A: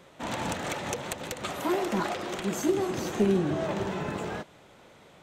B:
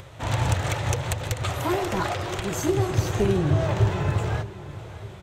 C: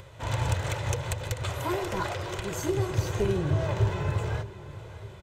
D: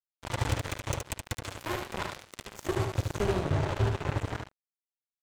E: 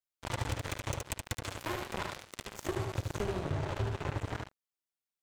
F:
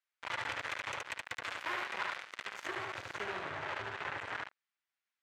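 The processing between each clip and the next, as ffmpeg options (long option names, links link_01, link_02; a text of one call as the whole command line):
ffmpeg -i in.wav -filter_complex "[0:a]acompressor=mode=upward:threshold=-46dB:ratio=2.5,lowshelf=frequency=150:width_type=q:width=3:gain=11,asplit=2[link_01][link_02];[link_02]adelay=610,lowpass=frequency=4500:poles=1,volume=-16dB,asplit=2[link_03][link_04];[link_04]adelay=610,lowpass=frequency=4500:poles=1,volume=0.53,asplit=2[link_05][link_06];[link_06]adelay=610,lowpass=frequency=4500:poles=1,volume=0.53,asplit=2[link_07][link_08];[link_08]adelay=610,lowpass=frequency=4500:poles=1,volume=0.53,asplit=2[link_09][link_10];[link_10]adelay=610,lowpass=frequency=4500:poles=1,volume=0.53[link_11];[link_01][link_03][link_05][link_07][link_09][link_11]amix=inputs=6:normalize=0,volume=4dB" out.wav
ffmpeg -i in.wav -af "aecho=1:1:2:0.34,volume=-5dB" out.wav
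ffmpeg -i in.wav -filter_complex "[0:a]acrusher=bits=3:mix=0:aa=0.5,asplit=2[link_01][link_02];[link_02]aecho=0:1:73:0.562[link_03];[link_01][link_03]amix=inputs=2:normalize=0,volume=-3.5dB" out.wav
ffmpeg -i in.wav -af "acompressor=threshold=-30dB:ratio=6" out.wav
ffmpeg -i in.wav -af "asoftclip=type=tanh:threshold=-30.5dB,bandpass=frequency=1800:width_type=q:width=1.3:csg=0,volume=10dB" out.wav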